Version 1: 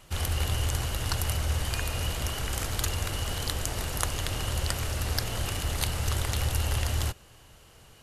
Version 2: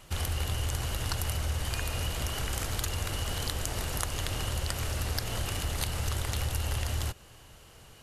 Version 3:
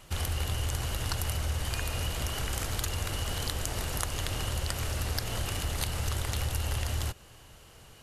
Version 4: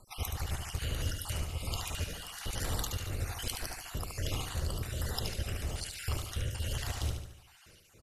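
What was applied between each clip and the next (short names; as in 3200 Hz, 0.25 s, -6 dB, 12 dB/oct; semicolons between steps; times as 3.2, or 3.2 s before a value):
compressor 2.5:1, threshold -30 dBFS, peak gain reduction 6 dB; gain +1 dB
nothing audible
random spectral dropouts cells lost 52%; rotary speaker horn 7 Hz, later 1.2 Hz, at 0.63; feedback echo 73 ms, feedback 50%, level -5.5 dB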